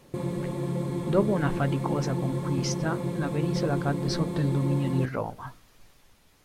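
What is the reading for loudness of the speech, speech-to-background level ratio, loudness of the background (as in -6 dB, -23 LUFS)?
-30.0 LUFS, 1.0 dB, -31.0 LUFS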